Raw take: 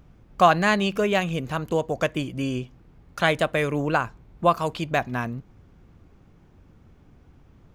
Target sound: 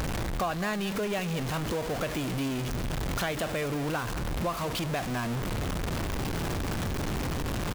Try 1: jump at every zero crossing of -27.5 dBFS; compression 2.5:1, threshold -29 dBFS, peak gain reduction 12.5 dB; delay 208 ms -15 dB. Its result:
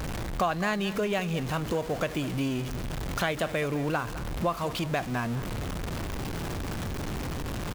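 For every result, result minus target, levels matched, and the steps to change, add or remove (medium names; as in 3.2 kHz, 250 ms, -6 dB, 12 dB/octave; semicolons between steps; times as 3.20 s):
jump at every zero crossing: distortion -8 dB; compression: peak gain reduction -5 dB
change: jump at every zero crossing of -16.5 dBFS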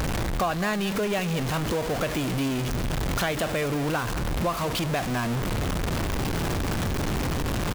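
compression: peak gain reduction -4 dB
change: compression 2.5:1, threshold -36 dBFS, peak gain reduction 17.5 dB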